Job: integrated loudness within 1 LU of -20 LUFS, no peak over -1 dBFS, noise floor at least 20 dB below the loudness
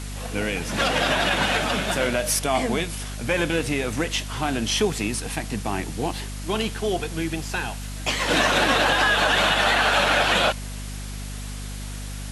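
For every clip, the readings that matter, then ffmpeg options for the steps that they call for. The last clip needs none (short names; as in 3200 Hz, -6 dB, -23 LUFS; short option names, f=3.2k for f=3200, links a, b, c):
hum 50 Hz; harmonics up to 250 Hz; hum level -31 dBFS; noise floor -33 dBFS; noise floor target -43 dBFS; loudness -22.5 LUFS; peak -7.0 dBFS; loudness target -20.0 LUFS
-> -af "bandreject=f=50:t=h:w=4,bandreject=f=100:t=h:w=4,bandreject=f=150:t=h:w=4,bandreject=f=200:t=h:w=4,bandreject=f=250:t=h:w=4"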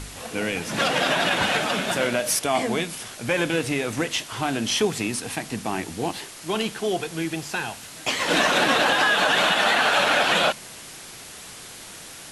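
hum none; noise floor -41 dBFS; noise floor target -43 dBFS
-> -af "afftdn=nr=6:nf=-41"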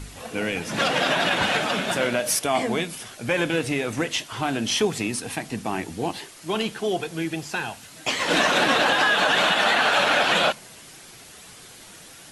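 noise floor -45 dBFS; loudness -22.5 LUFS; peak -7.5 dBFS; loudness target -20.0 LUFS
-> -af "volume=2.5dB"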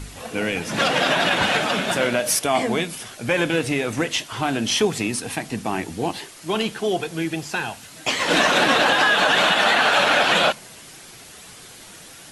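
loudness -20.0 LUFS; peak -5.0 dBFS; noise floor -43 dBFS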